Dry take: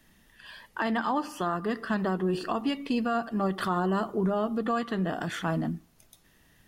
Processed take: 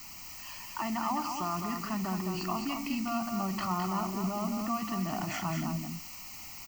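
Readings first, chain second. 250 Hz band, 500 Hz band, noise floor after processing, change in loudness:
−4.0 dB, −9.5 dB, −45 dBFS, −4.5 dB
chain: in parallel at −2 dB: compressor whose output falls as the input rises −35 dBFS
on the sum: background noise white −39 dBFS
phaser with its sweep stopped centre 2,400 Hz, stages 8
single-tap delay 211 ms −5.5 dB
level −4.5 dB

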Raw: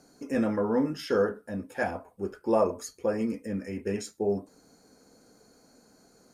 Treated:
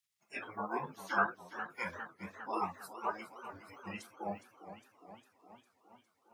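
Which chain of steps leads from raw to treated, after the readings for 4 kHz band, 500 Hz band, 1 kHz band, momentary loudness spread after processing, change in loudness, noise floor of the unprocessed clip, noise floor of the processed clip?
−9.5 dB, −17.0 dB, −1.0 dB, 19 LU, −10.0 dB, −62 dBFS, −78 dBFS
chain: three-way crossover with the lows and the highs turned down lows −21 dB, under 310 Hz, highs −13 dB, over 2,500 Hz
bit reduction 11 bits
noise reduction from a noise print of the clip's start 25 dB
gate on every frequency bin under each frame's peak −20 dB weak
high-pass filter 140 Hz 12 dB per octave
low-shelf EQ 190 Hz +9.5 dB
feedback echo with a swinging delay time 409 ms, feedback 66%, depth 150 cents, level −12 dB
level +10 dB

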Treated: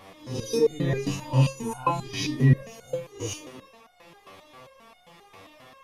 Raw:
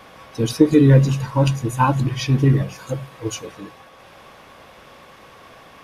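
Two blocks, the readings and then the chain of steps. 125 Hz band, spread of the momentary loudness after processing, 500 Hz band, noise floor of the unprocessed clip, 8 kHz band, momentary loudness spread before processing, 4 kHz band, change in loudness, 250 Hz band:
−8.0 dB, 14 LU, −5.0 dB, −46 dBFS, −3.5 dB, 17 LU, −4.5 dB, −8.0 dB, −11.0 dB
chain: peak hold with a rise ahead of every peak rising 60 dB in 0.53 s
notch filter 1,500 Hz, Q 5.6
step-sequenced resonator 7.5 Hz 96–720 Hz
level +5 dB

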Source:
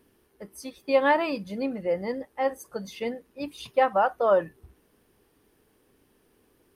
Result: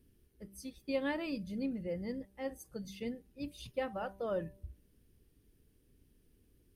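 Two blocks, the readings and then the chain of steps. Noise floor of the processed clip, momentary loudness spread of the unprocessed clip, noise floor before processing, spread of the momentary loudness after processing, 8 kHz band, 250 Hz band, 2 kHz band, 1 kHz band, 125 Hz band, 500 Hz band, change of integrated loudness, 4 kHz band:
−70 dBFS, 17 LU, −66 dBFS, 12 LU, −7.5 dB, −5.5 dB, −13.5 dB, −20.0 dB, −2.5 dB, −14.0 dB, −13.0 dB, −9.5 dB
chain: guitar amp tone stack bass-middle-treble 10-0-1
hum removal 195.4 Hz, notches 5
level +13 dB

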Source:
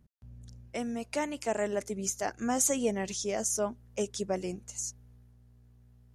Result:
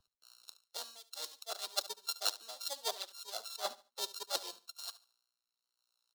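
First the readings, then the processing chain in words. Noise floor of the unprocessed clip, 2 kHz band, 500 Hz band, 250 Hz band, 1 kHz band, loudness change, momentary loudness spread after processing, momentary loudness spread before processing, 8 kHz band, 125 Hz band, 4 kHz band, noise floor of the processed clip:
−59 dBFS, −9.5 dB, −15.5 dB, −31.5 dB, −8.0 dB, −7.5 dB, 10 LU, 11 LU, −11.0 dB, below −35 dB, +6.5 dB, below −85 dBFS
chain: samples sorted by size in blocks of 32 samples
high-pass filter 480 Hz 24 dB per octave
reverb reduction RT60 1.2 s
high shelf with overshoot 3,000 Hz +9.5 dB, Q 3
reversed playback
downward compressor 4 to 1, threshold −43 dBFS, peak gain reduction 24 dB
reversed playback
harmonic and percussive parts rebalanced harmonic −12 dB
tape wow and flutter 21 cents
on a send: repeating echo 72 ms, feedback 32%, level −15.5 dB
on the sum: multiband upward and downward expander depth 70%
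level +8.5 dB

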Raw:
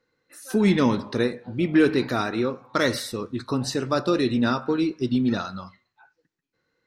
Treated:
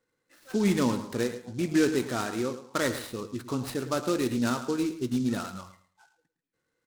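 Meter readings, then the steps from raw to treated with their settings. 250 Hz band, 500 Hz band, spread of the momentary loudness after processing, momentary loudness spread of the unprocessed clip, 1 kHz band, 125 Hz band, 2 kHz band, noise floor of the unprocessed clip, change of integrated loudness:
−5.0 dB, −5.5 dB, 9 LU, 10 LU, −5.5 dB, −5.0 dB, −6.0 dB, −79 dBFS, −5.5 dB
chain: Savitzky-Golay smoothing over 15 samples
on a send: repeating echo 109 ms, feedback 22%, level −13 dB
on the sum: short delay modulated by noise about 4,900 Hz, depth 0.042 ms
level −5.5 dB

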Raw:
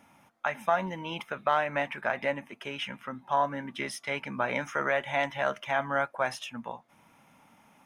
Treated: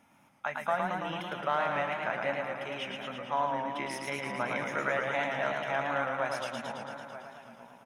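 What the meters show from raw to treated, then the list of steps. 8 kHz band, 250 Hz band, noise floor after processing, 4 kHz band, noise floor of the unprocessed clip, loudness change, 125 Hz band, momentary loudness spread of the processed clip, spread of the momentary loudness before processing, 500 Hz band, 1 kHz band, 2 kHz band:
−2.0 dB, −1.5 dB, −63 dBFS, −2.0 dB, −62 dBFS, −2.0 dB, −1.5 dB, 10 LU, 10 LU, −1.5 dB, −1.5 dB, −1.5 dB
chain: slap from a distant wall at 160 metres, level −12 dB
feedback echo with a swinging delay time 111 ms, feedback 73%, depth 103 cents, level −4 dB
level −4.5 dB

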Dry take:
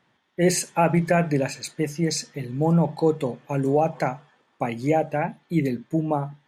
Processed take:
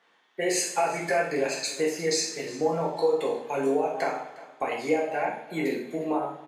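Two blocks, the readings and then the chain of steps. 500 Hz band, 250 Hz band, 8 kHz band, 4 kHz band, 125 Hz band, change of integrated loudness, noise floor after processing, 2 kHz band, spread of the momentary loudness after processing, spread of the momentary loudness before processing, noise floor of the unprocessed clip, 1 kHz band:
−1.5 dB, −8.0 dB, 0.0 dB, +1.5 dB, −17.5 dB, −3.5 dB, −64 dBFS, 0.0 dB, 6 LU, 8 LU, −67 dBFS, −2.5 dB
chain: high-pass filter 450 Hz 12 dB per octave
high-shelf EQ 11,000 Hz −8 dB
downward compressor, threshold −27 dBFS, peak gain reduction 11 dB
on a send: single-tap delay 358 ms −18.5 dB
on the sum: coupled-rooms reverb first 0.62 s, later 2.4 s, from −24 dB, DRR −3.5 dB

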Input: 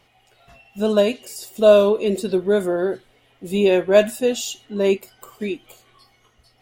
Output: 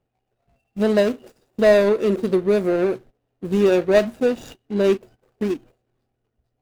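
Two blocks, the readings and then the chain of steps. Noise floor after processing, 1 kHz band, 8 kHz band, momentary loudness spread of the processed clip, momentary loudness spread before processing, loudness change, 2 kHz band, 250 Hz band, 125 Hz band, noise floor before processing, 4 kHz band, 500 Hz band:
−76 dBFS, −1.0 dB, can't be measured, 15 LU, 15 LU, −0.5 dB, +1.0 dB, +1.5 dB, +2.0 dB, −60 dBFS, −5.0 dB, −1.0 dB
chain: running median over 41 samples
noise gate −44 dBFS, range −16 dB
in parallel at +3 dB: downward compressor, threshold −24 dBFS, peak gain reduction 13.5 dB
on the sum: level −2.5 dB

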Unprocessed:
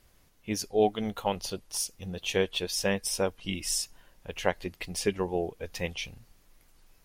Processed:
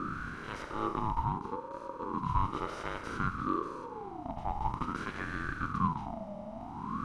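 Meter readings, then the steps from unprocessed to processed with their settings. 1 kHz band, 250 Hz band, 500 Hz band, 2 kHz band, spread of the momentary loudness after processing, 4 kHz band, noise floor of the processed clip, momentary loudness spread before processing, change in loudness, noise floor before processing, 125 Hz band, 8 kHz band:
+4.0 dB, −3.0 dB, −12.0 dB, −3.0 dB, 9 LU, −18.0 dB, −44 dBFS, 10 LU, −5.0 dB, −64 dBFS, +1.5 dB, −26.0 dB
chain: compressor on every frequency bin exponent 0.2
LFO wah 0.43 Hz 200–1,100 Hz, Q 4.2
ring modulator whose carrier an LFO sweeps 580 Hz, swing 30%, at 0.55 Hz

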